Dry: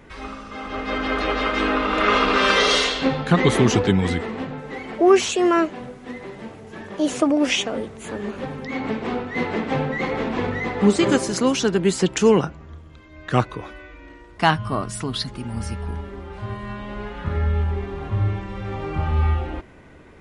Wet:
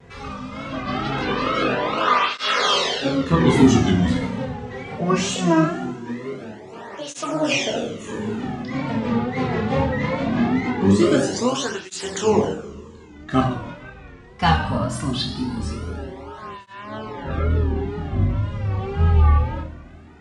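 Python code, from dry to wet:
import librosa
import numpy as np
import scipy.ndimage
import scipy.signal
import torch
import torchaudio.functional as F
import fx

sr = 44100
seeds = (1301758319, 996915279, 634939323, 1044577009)

p1 = fx.octave_divider(x, sr, octaves=1, level_db=-3.0)
p2 = scipy.signal.sosfilt(scipy.signal.butter(4, 8700.0, 'lowpass', fs=sr, output='sos'), p1)
p3 = fx.peak_eq(p2, sr, hz=2200.0, db=-2.5, octaves=0.72)
p4 = fx.rev_double_slope(p3, sr, seeds[0], early_s=0.73, late_s=2.7, knee_db=-18, drr_db=1.5)
p5 = fx.rider(p4, sr, range_db=3, speed_s=2.0)
p6 = p4 + F.gain(torch.from_numpy(p5), 1.0).numpy()
p7 = fx.chorus_voices(p6, sr, voices=6, hz=1.2, base_ms=26, depth_ms=3.0, mix_pct=35)
p8 = fx.wow_flutter(p7, sr, seeds[1], rate_hz=2.1, depth_cents=83.0)
p9 = fx.flanger_cancel(p8, sr, hz=0.21, depth_ms=3.4)
y = F.gain(torch.from_numpy(p9), -3.0).numpy()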